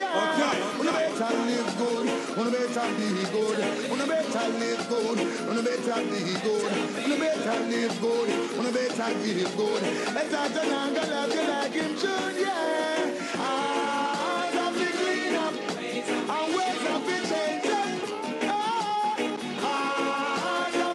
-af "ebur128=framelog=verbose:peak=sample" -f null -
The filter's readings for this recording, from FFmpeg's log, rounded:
Integrated loudness:
  I:         -27.2 LUFS
  Threshold: -37.2 LUFS
Loudness range:
  LRA:         0.8 LU
  Threshold: -47.3 LUFS
  LRA low:   -27.7 LUFS
  LRA high:  -26.9 LUFS
Sample peak:
  Peak:      -12.9 dBFS